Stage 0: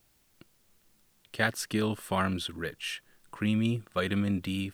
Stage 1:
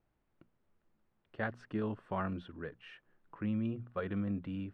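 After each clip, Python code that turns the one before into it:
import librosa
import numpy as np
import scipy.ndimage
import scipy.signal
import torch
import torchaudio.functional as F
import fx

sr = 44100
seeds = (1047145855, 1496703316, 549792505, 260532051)

y = scipy.signal.sosfilt(scipy.signal.butter(2, 1400.0, 'lowpass', fs=sr, output='sos'), x)
y = fx.hum_notches(y, sr, base_hz=60, count=4)
y = y * librosa.db_to_amplitude(-6.5)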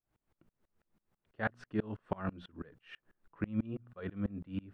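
y = fx.tremolo_decay(x, sr, direction='swelling', hz=6.1, depth_db=30)
y = y * librosa.db_to_amplitude(7.5)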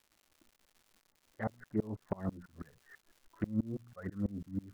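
y = fx.brickwall_lowpass(x, sr, high_hz=2100.0)
y = fx.env_flanger(y, sr, rest_ms=3.6, full_db=-34.0)
y = fx.dmg_crackle(y, sr, seeds[0], per_s=240.0, level_db=-54.0)
y = y * librosa.db_to_amplitude(1.0)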